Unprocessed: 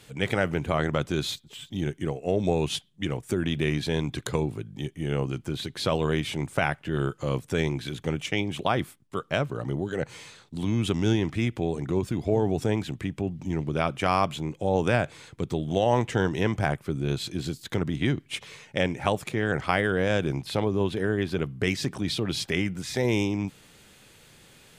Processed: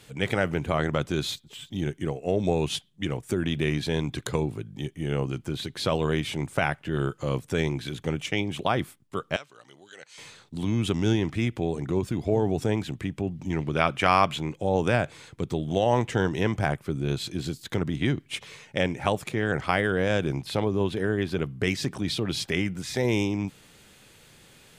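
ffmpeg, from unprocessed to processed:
-filter_complex "[0:a]asettb=1/sr,asplit=3[s0][s1][s2];[s0]atrim=end=9.364[s3];[s1]atrim=start=9.36:end=10.18,asetpts=PTS-STARTPTS,afade=t=in:d=0.004:c=qsin,afade=t=out:st=0.816:d=0.004:c=qsin,bandpass=f=5200:t=q:w=0.9[s4];[s2]atrim=start=10.176[s5];[s3][s4]acrossfade=d=0.004:c1=hsin:c2=qsin[s6];[s6][s5]acrossfade=d=0.004:c1=qsin:c2=hsin,asettb=1/sr,asplit=3[s7][s8][s9];[s7]atrim=end=13.504[s10];[s8]atrim=start=13.5:end=14.55,asetpts=PTS-STARTPTS,afade=t=in:d=0.004:c=qsin,afade=t=out:st=1.046:d=0.004:c=qsin,equalizer=f=2000:w=0.53:g=6[s11];[s9]atrim=start=14.546[s12];[s10][s11]acrossfade=d=0.004:c1=hsin:c2=qsin[s13];[s13][s12]acrossfade=d=0.004:c1=qsin:c2=hsin"

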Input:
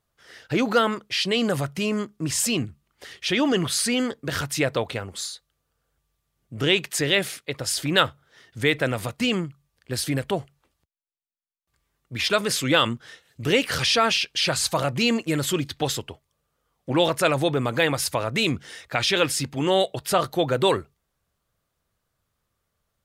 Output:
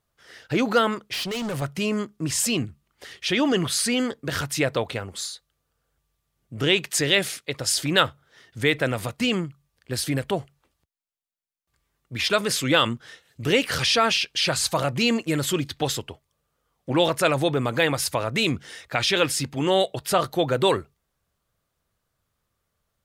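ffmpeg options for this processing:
-filter_complex "[0:a]asettb=1/sr,asplit=3[s0][s1][s2];[s0]atrim=end=1.134[s3];[s1]atrim=start=1.13:end=1.62,asetpts=PTS-STARTPTS,afade=t=in:d=0.004:c=qsin,afade=t=out:st=0.486:d=0.004:c=qsin,volume=21.1,asoftclip=hard,volume=0.0473[s4];[s2]atrim=start=1.616[s5];[s3][s4]acrossfade=d=0.004:c1=hsin:c2=qsin[s6];[s6][s5]acrossfade=d=0.004:c1=qsin:c2=hsin,asettb=1/sr,asplit=3[s7][s8][s9];[s7]atrim=end=6.884[s10];[s8]atrim=start=6.88:end=7.93,asetpts=PTS-STARTPTS,afade=t=in:d=0.004:c=qsin,afade=t=out:st=1.046:d=0.004:c=qsin,equalizer=f=6300:w=0.67:g=3.5[s11];[s9]atrim=start=7.926[s12];[s10][s11]acrossfade=d=0.004:c1=hsin:c2=qsin[s13];[s13][s12]acrossfade=d=0.004:c1=qsin:c2=hsin"

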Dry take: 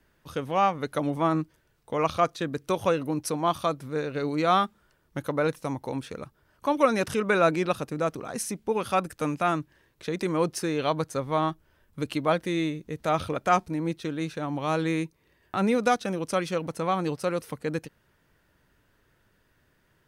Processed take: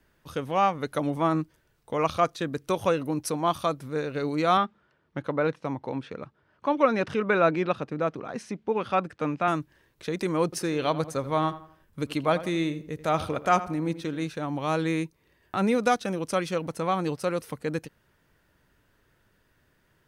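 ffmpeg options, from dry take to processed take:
-filter_complex "[0:a]asettb=1/sr,asplit=3[s0][s1][s2];[s0]atrim=end=4.574[s3];[s1]atrim=start=4.57:end=9.48,asetpts=PTS-STARTPTS,afade=t=in:d=0.004:c=qsin,afade=t=out:st=4.906:d=0.004:c=qsin,highpass=100,lowpass=3300[s4];[s2]atrim=start=9.476[s5];[s3][s4]acrossfade=d=0.004:c1=hsin:c2=qsin[s6];[s6][s5]acrossfade=d=0.004:c1=qsin:c2=hsin,asettb=1/sr,asplit=3[s7][s8][s9];[s7]atrim=end=10.444[s10];[s8]atrim=start=10.44:end=14.27,asetpts=PTS-STARTPTS,afade=t=in:d=0.004:c=qsin,afade=t=out:st=3.826:d=0.004:c=qsin,asplit=2[s11][s12];[s12]adelay=84,lowpass=f=2600:p=1,volume=0.2,asplit=2[s13][s14];[s14]adelay=84,lowpass=f=2600:p=1,volume=0.39,asplit=2[s15][s16];[s16]adelay=84,lowpass=f=2600:p=1,volume=0.39,asplit=2[s17][s18];[s18]adelay=84,lowpass=f=2600:p=1,volume=0.39[s19];[s11][s13][s15][s17][s19]amix=inputs=5:normalize=0,atrim=end_sample=168903[s20];[s9]atrim=start=14.266[s21];[s10][s20]acrossfade=d=0.004:c1=hsin:c2=qsin[s22];[s22][s21]acrossfade=d=0.004:c1=qsin:c2=hsin"

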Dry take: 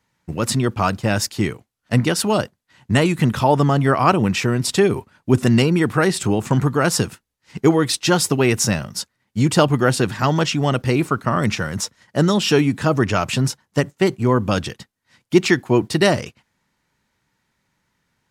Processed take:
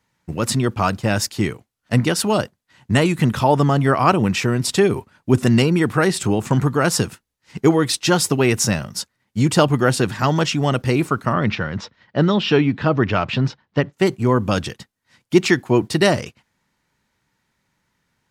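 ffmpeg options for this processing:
-filter_complex "[0:a]asplit=3[s0][s1][s2];[s0]afade=t=out:st=11.32:d=0.02[s3];[s1]lowpass=f=4100:w=0.5412,lowpass=f=4100:w=1.3066,afade=t=in:st=11.32:d=0.02,afade=t=out:st=13.92:d=0.02[s4];[s2]afade=t=in:st=13.92:d=0.02[s5];[s3][s4][s5]amix=inputs=3:normalize=0"

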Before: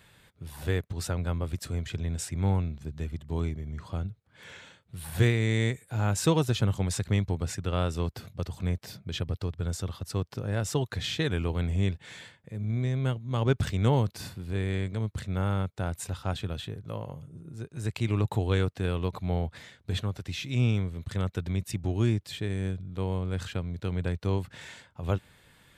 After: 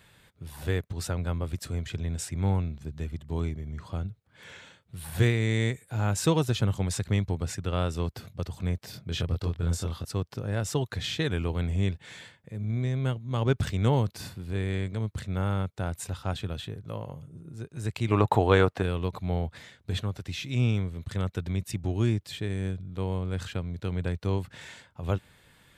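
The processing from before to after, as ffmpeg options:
-filter_complex "[0:a]asettb=1/sr,asplit=3[s0][s1][s2];[s0]atrim=end=8.914[s3];[s1]atrim=start=8.91:end=10.05,asetpts=PTS-STARTPTS,afade=t=in:d=0.004:c=qsin,afade=t=out:st=1.136:d=0.004:c=qsin,asplit=2[s4][s5];[s5]adelay=24,volume=0.794[s6];[s4][s6]amix=inputs=2:normalize=0,atrim=end_sample=50274[s7];[s2]atrim=start=10.046[s8];[s3][s7]acrossfade=d=0.004:c1=hsin:c2=qsin[s9];[s9][s8]acrossfade=d=0.004:c1=qsin:c2=hsin,asettb=1/sr,asplit=3[s10][s11][s12];[s10]atrim=end=18.114[s13];[s11]atrim=start=18.11:end=18.83,asetpts=PTS-STARTPTS,afade=t=in:d=0.004:c=qsin,afade=t=out:st=0.716:d=0.004:c=qsin,equalizer=f=890:w=0.44:g=13[s14];[s12]atrim=start=18.826[s15];[s13][s14]acrossfade=d=0.004:c1=hsin:c2=qsin[s16];[s16][s15]acrossfade=d=0.004:c1=qsin:c2=hsin"

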